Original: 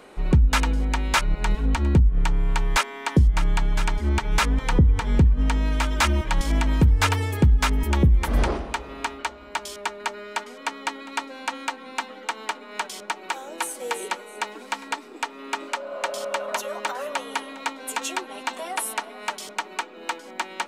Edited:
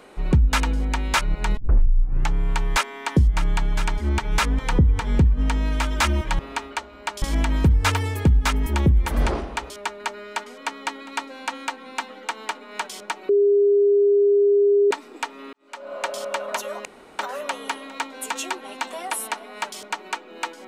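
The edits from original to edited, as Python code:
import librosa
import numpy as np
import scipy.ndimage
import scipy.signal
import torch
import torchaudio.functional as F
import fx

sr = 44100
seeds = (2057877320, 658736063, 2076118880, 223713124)

y = fx.edit(x, sr, fx.tape_start(start_s=1.57, length_s=0.74),
    fx.move(start_s=8.87, length_s=0.83, to_s=6.39),
    fx.bleep(start_s=13.29, length_s=1.62, hz=405.0, db=-13.5),
    fx.fade_in_span(start_s=15.53, length_s=0.37, curve='qua'),
    fx.insert_room_tone(at_s=16.85, length_s=0.34), tone=tone)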